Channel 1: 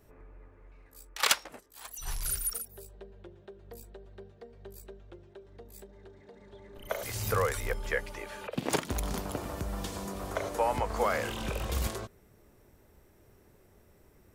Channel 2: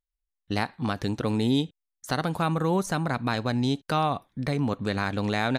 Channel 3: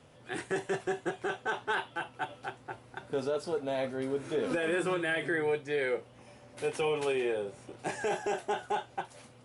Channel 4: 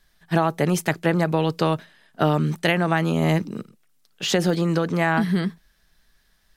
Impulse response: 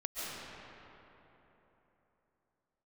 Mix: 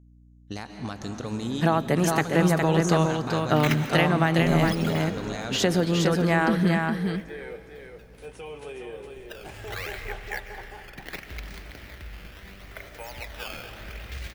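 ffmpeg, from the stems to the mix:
-filter_complex "[0:a]acrusher=samples=13:mix=1:aa=0.000001:lfo=1:lforange=20.8:lforate=0.74,equalizer=frequency=125:width_type=o:width=1:gain=-6,equalizer=frequency=250:width_type=o:width=1:gain=-9,equalizer=frequency=500:width_type=o:width=1:gain=-7,equalizer=frequency=1000:width_type=o:width=1:gain=-12,equalizer=frequency=2000:width_type=o:width=1:gain=8,equalizer=frequency=8000:width_type=o:width=1:gain=-9,adelay=2400,volume=-5dB,asplit=2[link_01][link_02];[link_02]volume=-7.5dB[link_03];[1:a]equalizer=frequency=6600:width_type=o:width=0.44:gain=14.5,alimiter=limit=-17dB:level=0:latency=1:release=50,volume=-8.5dB,asplit=2[link_04][link_05];[link_05]volume=-4.5dB[link_06];[2:a]adelay=1600,volume=-10.5dB,asplit=3[link_07][link_08][link_09];[link_08]volume=-11.5dB[link_10];[link_09]volume=-4dB[link_11];[3:a]adelay=1300,volume=-2.5dB,asplit=3[link_12][link_13][link_14];[link_13]volume=-21dB[link_15];[link_14]volume=-3.5dB[link_16];[4:a]atrim=start_sample=2205[link_17];[link_03][link_06][link_10][link_15]amix=inputs=4:normalize=0[link_18];[link_18][link_17]afir=irnorm=-1:irlink=0[link_19];[link_11][link_16]amix=inputs=2:normalize=0,aecho=0:1:411:1[link_20];[link_01][link_04][link_07][link_12][link_19][link_20]amix=inputs=6:normalize=0,aeval=exprs='val(0)+0.00251*(sin(2*PI*60*n/s)+sin(2*PI*2*60*n/s)/2+sin(2*PI*3*60*n/s)/3+sin(2*PI*4*60*n/s)/4+sin(2*PI*5*60*n/s)/5)':channel_layout=same"

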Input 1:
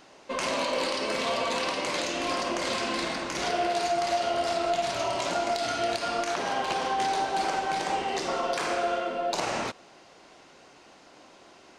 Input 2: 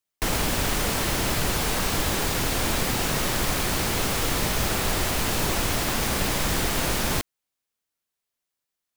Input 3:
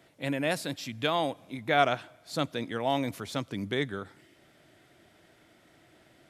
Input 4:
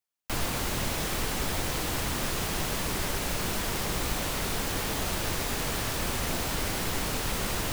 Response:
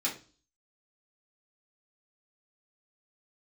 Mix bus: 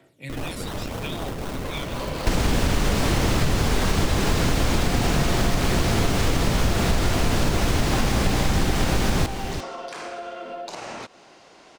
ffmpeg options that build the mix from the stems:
-filter_complex "[0:a]acompressor=threshold=-35dB:ratio=6,adelay=1350,volume=3dB[link_01];[1:a]lowshelf=frequency=400:gain=8.5,acrossover=split=8100[link_02][link_03];[link_03]acompressor=threshold=-41dB:ratio=4:attack=1:release=60[link_04];[link_02][link_04]amix=inputs=2:normalize=0,adelay=2050,volume=2.5dB,asplit=2[link_05][link_06];[link_06]volume=-12.5dB[link_07];[2:a]acrossover=split=150|3000[link_08][link_09][link_10];[link_09]acompressor=threshold=-46dB:ratio=2[link_11];[link_08][link_11][link_10]amix=inputs=3:normalize=0,aphaser=in_gain=1:out_gain=1:delay=1.1:decay=0.61:speed=0.79:type=triangular,volume=-4.5dB,asplit=3[link_12][link_13][link_14];[link_13]volume=-8.5dB[link_15];[3:a]acrusher=samples=36:mix=1:aa=0.000001:lfo=1:lforange=36:lforate=3.9,volume=-2dB,asplit=2[link_16][link_17];[link_17]volume=-3.5dB[link_18];[link_14]apad=whole_len=579237[link_19];[link_01][link_19]sidechaincompress=threshold=-44dB:ratio=8:attack=16:release=148[link_20];[4:a]atrim=start_sample=2205[link_21];[link_15][link_21]afir=irnorm=-1:irlink=0[link_22];[link_07][link_18]amix=inputs=2:normalize=0,aecho=0:1:344:1[link_23];[link_20][link_05][link_12][link_16][link_22][link_23]amix=inputs=6:normalize=0,acompressor=threshold=-16dB:ratio=6"

